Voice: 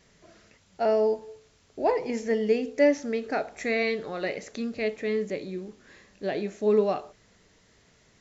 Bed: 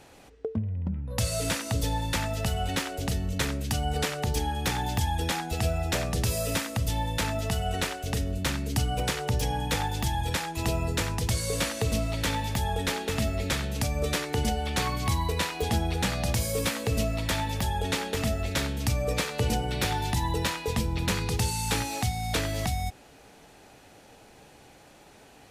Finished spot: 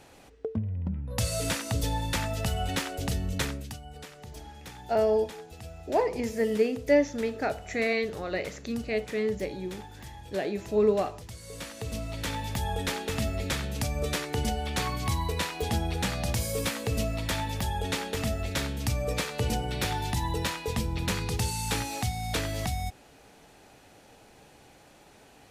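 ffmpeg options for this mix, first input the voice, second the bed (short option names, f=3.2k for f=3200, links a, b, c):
-filter_complex "[0:a]adelay=4100,volume=-1dB[a];[1:a]volume=13.5dB,afade=t=out:st=3.38:d=0.41:silence=0.16788,afade=t=in:st=11.39:d=1.33:silence=0.188365[b];[a][b]amix=inputs=2:normalize=0"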